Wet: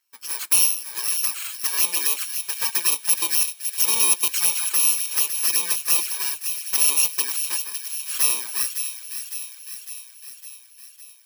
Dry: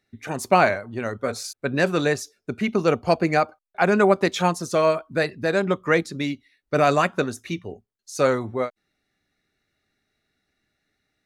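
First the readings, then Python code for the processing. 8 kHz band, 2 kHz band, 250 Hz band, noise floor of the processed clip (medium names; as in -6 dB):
+19.0 dB, -5.5 dB, -23.5 dB, -49 dBFS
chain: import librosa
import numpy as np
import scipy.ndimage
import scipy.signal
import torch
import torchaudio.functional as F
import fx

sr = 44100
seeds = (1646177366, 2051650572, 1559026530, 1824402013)

p1 = fx.bit_reversed(x, sr, seeds[0], block=64)
p2 = scipy.signal.sosfilt(scipy.signal.butter(2, 1200.0, 'highpass', fs=sr, output='sos'), p1)
p3 = fx.env_flanger(p2, sr, rest_ms=9.6, full_db=-18.5)
p4 = fx.fold_sine(p3, sr, drive_db=6, ceiling_db=-6.5)
p5 = p3 + (p4 * librosa.db_to_amplitude(-5.0))
p6 = fx.echo_wet_highpass(p5, sr, ms=557, feedback_pct=61, hz=1900.0, wet_db=-8.0)
y = p6 * librosa.db_to_amplitude(-2.5)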